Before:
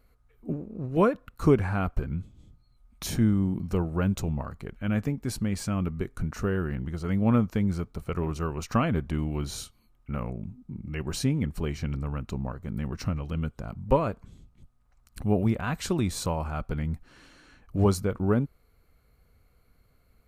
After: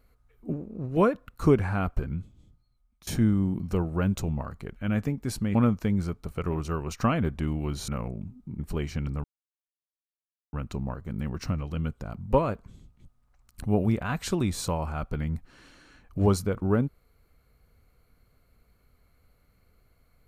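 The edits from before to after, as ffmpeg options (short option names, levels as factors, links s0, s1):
-filter_complex "[0:a]asplit=6[s0][s1][s2][s3][s4][s5];[s0]atrim=end=3.07,asetpts=PTS-STARTPTS,afade=t=out:st=2.06:d=1.01:silence=0.0841395[s6];[s1]atrim=start=3.07:end=5.552,asetpts=PTS-STARTPTS,afade=t=in:d=0.004:c=hsin:silence=0.0841395[s7];[s2]atrim=start=7.258:end=9.592[s8];[s3]atrim=start=10.098:end=10.812[s9];[s4]atrim=start=11.458:end=12.11,asetpts=PTS-STARTPTS,afade=t=out:st=0.648:d=0.004:c=hsin,apad=pad_dur=1.29[s10];[s5]atrim=start=12.11,asetpts=PTS-STARTPTS,afade=t=in:d=0.004:c=hsin[s11];[s6][s7]concat=n=2:v=0:a=1[s12];[s12][s8]acrossfade=d=0.004:c1=hsin:c2=hsin[s13];[s13][s9]acrossfade=d=0.004:c1=hsin:c2=hsin[s14];[s10][s11]concat=n=2:v=0:a=1[s15];[s14][s15]acrossfade=d=0.004:c1=hsin:c2=hsin"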